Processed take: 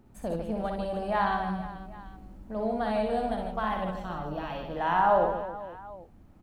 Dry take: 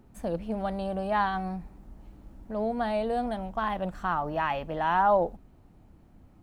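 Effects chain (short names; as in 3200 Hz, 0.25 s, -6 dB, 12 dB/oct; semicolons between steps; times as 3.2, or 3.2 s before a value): 3.91–4.76 ten-band EQ 1000 Hz -10 dB, 2000 Hz -10 dB, 4000 Hz +4 dB, 8000 Hz -4 dB; reverse bouncing-ball echo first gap 60 ms, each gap 1.5×, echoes 5; gain -2 dB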